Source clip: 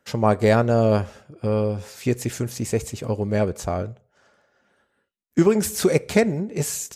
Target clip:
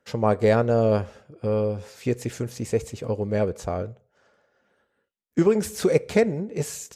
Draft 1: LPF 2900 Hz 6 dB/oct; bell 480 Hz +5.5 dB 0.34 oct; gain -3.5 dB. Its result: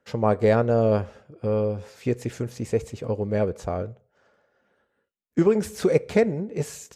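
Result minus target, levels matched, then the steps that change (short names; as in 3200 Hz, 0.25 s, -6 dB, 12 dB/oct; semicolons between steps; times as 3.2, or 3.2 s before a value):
8000 Hz band -4.5 dB
change: LPF 6100 Hz 6 dB/oct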